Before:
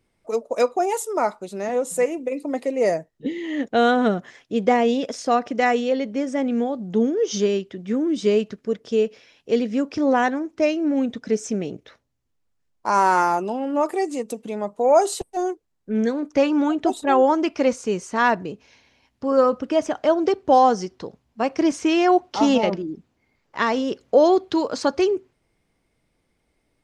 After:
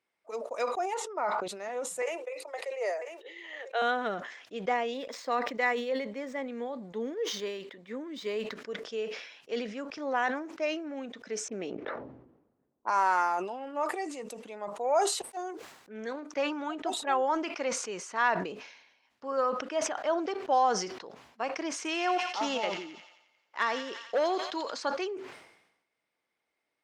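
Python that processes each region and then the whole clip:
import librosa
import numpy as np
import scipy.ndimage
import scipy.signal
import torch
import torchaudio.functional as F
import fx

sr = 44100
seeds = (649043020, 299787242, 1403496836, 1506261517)

y = fx.chain(x, sr, fx.lowpass(hz=5100.0, slope=12),
    fx.high_shelf(hz=2900.0, db=-10.0),
    fx.sustainer(db_per_s=24.0), at=(0.94, 1.48))
y = fx.chain(y, sr, fx.steep_highpass(hz=370.0, slope=72),
    fx.echo_single(ms=993, db=-22.5), at=(2.02, 3.82))
y = fx.chain(y, sr, fx.median_filter(points=5),
    fx.ripple_eq(per_octave=1.0, db=6), at=(4.94, 8.55))
y = fx.chain(y, sr, fx.env_lowpass(base_hz=360.0, full_db=-21.0),
    fx.peak_eq(hz=280.0, db=5.5, octaves=1.6),
    fx.sustainer(db_per_s=22.0), at=(11.48, 12.9))
y = fx.chain(y, sr, fx.transient(attack_db=-3, sustain_db=-10),
    fx.sustainer(db_per_s=26.0), at=(15.36, 16.16))
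y = fx.chain(y, sr, fx.high_shelf(hz=4400.0, db=5.5),
    fx.overload_stage(gain_db=9.5),
    fx.echo_wet_highpass(ms=88, feedback_pct=62, hz=1500.0, wet_db=-10.0), at=(21.76, 24.74))
y = scipy.signal.sosfilt(scipy.signal.bessel(2, 1700.0, 'highpass', norm='mag', fs=sr, output='sos'), y)
y = fx.tilt_eq(y, sr, slope=-4.5)
y = fx.sustainer(y, sr, db_per_s=65.0)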